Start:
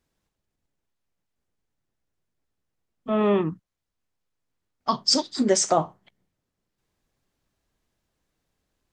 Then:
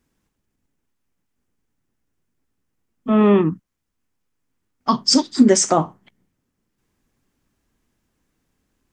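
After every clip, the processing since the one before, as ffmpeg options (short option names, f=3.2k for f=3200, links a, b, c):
-af "equalizer=f=250:t=o:w=0.67:g=6,equalizer=f=630:t=o:w=0.67:g=-5,equalizer=f=4k:t=o:w=0.67:g=-5,volume=6dB"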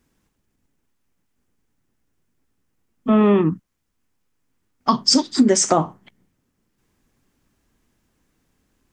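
-af "acompressor=threshold=-17dB:ratio=2.5,volume=3.5dB"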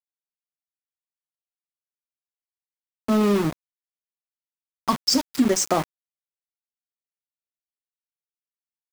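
-af "aeval=exprs='val(0)*gte(abs(val(0)),0.1)':c=same,volume=-4.5dB"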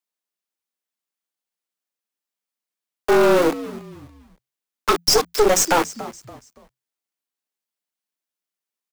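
-filter_complex "[0:a]afreqshift=170,asplit=4[a][b][c][d];[b]adelay=284,afreqshift=-100,volume=-18dB[e];[c]adelay=568,afreqshift=-200,volume=-27.1dB[f];[d]adelay=852,afreqshift=-300,volume=-36.2dB[g];[a][e][f][g]amix=inputs=4:normalize=0,aeval=exprs='0.447*(cos(1*acos(clip(val(0)/0.447,-1,1)))-cos(1*PI/2))+0.1*(cos(4*acos(clip(val(0)/0.447,-1,1)))-cos(4*PI/2))+0.112*(cos(5*acos(clip(val(0)/0.447,-1,1)))-cos(5*PI/2))':c=same"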